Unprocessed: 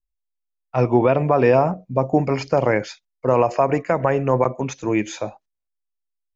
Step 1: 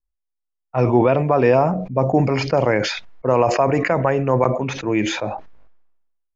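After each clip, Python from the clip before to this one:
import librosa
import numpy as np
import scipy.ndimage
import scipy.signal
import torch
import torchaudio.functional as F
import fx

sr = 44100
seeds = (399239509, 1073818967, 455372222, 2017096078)

y = fx.env_lowpass(x, sr, base_hz=1200.0, full_db=-12.5)
y = fx.sustainer(y, sr, db_per_s=51.0)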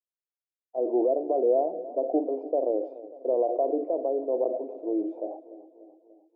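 y = scipy.signal.sosfilt(scipy.signal.ellip(3, 1.0, 50, [300.0, 690.0], 'bandpass', fs=sr, output='sos'), x)
y = fx.echo_feedback(y, sr, ms=293, feedback_pct=57, wet_db=-16.5)
y = y * 10.0 ** (-6.5 / 20.0)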